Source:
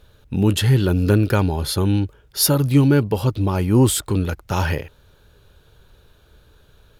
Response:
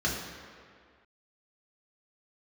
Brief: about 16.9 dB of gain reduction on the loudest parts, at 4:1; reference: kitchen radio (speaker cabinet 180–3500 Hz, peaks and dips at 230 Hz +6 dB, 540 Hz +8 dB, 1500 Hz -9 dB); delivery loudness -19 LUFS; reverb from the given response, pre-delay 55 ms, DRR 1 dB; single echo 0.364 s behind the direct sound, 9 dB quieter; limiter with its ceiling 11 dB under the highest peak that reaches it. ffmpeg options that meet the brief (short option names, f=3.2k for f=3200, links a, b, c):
-filter_complex "[0:a]acompressor=threshold=-32dB:ratio=4,alimiter=level_in=6dB:limit=-24dB:level=0:latency=1,volume=-6dB,aecho=1:1:364:0.355,asplit=2[a][b];[1:a]atrim=start_sample=2205,adelay=55[c];[b][c]afir=irnorm=-1:irlink=0,volume=-10.5dB[d];[a][d]amix=inputs=2:normalize=0,highpass=180,equalizer=f=230:t=q:w=4:g=6,equalizer=f=540:t=q:w=4:g=8,equalizer=f=1.5k:t=q:w=4:g=-9,lowpass=f=3.5k:w=0.5412,lowpass=f=3.5k:w=1.3066,volume=16.5dB"